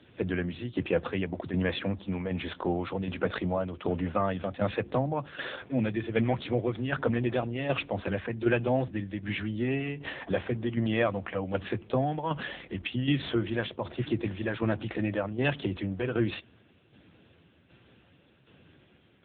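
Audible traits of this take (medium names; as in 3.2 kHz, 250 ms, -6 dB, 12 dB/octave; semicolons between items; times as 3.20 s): tremolo saw down 1.3 Hz, depth 60%; AMR-NB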